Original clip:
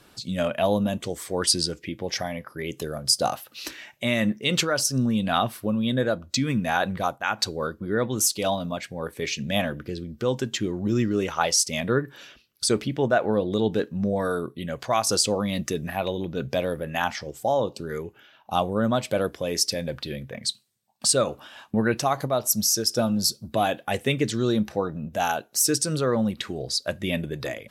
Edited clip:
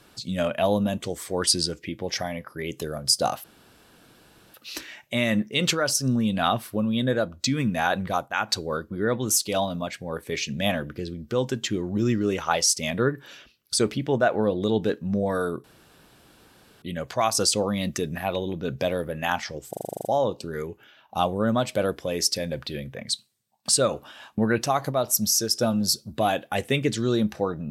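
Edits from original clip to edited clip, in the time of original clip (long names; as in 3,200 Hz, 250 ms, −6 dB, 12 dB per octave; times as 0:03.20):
0:03.44: splice in room tone 1.10 s
0:14.54: splice in room tone 1.18 s
0:17.41: stutter 0.04 s, 10 plays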